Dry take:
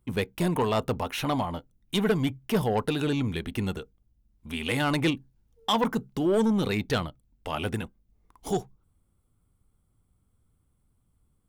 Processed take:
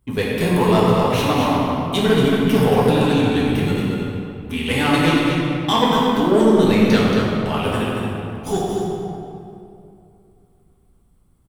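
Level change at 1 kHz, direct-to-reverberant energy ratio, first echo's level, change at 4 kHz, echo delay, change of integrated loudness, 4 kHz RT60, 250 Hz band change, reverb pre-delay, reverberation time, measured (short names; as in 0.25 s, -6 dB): +11.0 dB, -7.0 dB, -5.5 dB, +9.5 dB, 0.228 s, +10.0 dB, 1.6 s, +11.5 dB, 3 ms, 2.6 s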